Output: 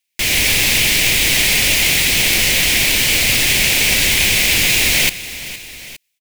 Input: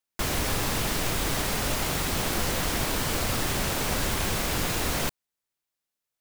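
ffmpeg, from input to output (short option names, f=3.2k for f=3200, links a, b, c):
-filter_complex "[0:a]highshelf=f=1.7k:t=q:w=3:g=10,dynaudnorm=f=190:g=3:m=5.5dB,asplit=2[a][b];[b]aecho=0:1:464|871:0.168|0.106[c];[a][c]amix=inputs=2:normalize=0,volume=1dB"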